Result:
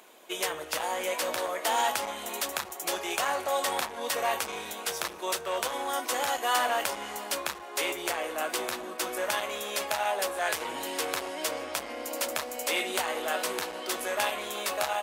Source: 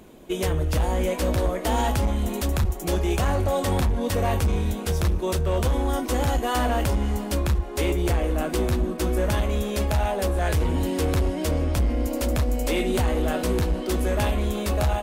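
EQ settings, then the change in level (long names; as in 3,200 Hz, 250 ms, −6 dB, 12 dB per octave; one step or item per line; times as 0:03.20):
high-pass filter 800 Hz 12 dB per octave
+2.0 dB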